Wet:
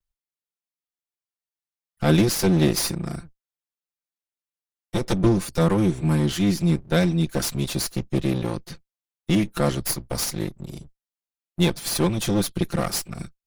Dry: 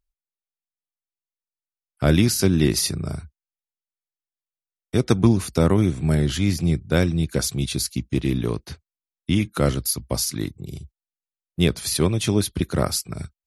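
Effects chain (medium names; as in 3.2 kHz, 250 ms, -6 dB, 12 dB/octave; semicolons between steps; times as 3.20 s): comb filter that takes the minimum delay 5.8 ms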